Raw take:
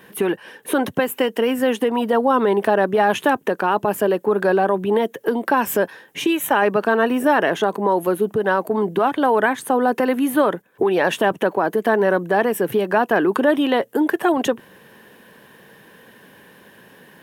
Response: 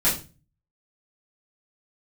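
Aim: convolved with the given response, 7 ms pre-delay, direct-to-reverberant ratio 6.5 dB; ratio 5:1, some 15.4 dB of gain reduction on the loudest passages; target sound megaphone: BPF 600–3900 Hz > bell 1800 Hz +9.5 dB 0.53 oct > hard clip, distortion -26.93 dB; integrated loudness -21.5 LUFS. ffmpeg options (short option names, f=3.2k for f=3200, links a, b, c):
-filter_complex "[0:a]acompressor=threshold=-31dB:ratio=5,asplit=2[a][b];[1:a]atrim=start_sample=2205,adelay=7[c];[b][c]afir=irnorm=-1:irlink=0,volume=-20.5dB[d];[a][d]amix=inputs=2:normalize=0,highpass=600,lowpass=3.9k,equalizer=f=1.8k:t=o:w=0.53:g=9.5,asoftclip=type=hard:threshold=-21.5dB,volume=13dB"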